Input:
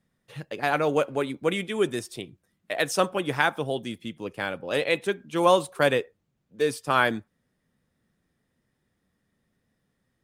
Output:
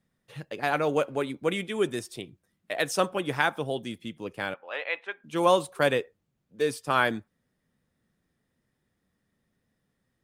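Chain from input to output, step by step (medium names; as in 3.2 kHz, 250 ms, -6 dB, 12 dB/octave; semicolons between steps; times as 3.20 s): 4.54–5.24 s: Butterworth band-pass 1.4 kHz, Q 0.72; trim -2 dB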